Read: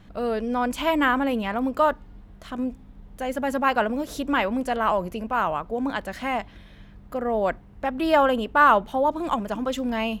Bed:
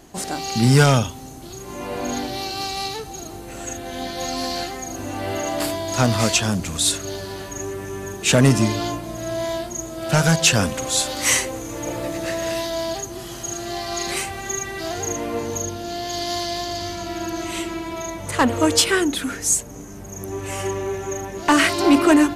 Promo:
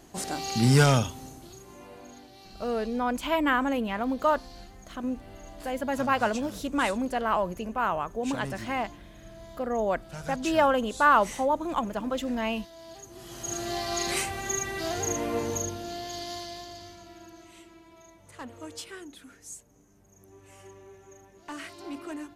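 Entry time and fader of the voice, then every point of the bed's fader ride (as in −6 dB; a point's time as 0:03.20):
2.45 s, −3.5 dB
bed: 0:01.25 −5.5 dB
0:02.15 −23 dB
0:12.77 −23 dB
0:13.55 −3.5 dB
0:15.49 −3.5 dB
0:17.55 −24 dB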